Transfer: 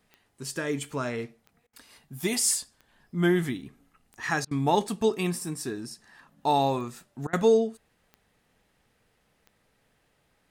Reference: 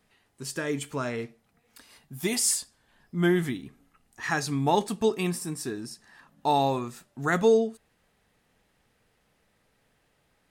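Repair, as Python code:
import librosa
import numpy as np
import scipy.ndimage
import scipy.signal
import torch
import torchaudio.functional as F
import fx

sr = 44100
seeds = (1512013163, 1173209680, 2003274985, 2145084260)

y = fx.fix_declick_ar(x, sr, threshold=10.0)
y = fx.fix_interpolate(y, sr, at_s=(1.67, 4.45, 7.27), length_ms=60.0)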